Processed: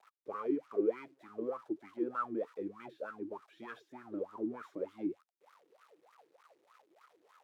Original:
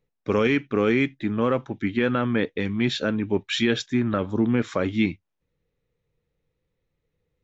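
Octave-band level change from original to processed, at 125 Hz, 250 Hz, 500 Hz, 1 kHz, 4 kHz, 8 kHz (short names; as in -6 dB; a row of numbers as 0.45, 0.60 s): -31.5 dB, -16.5 dB, -13.0 dB, -11.5 dB, -34.5 dB, n/a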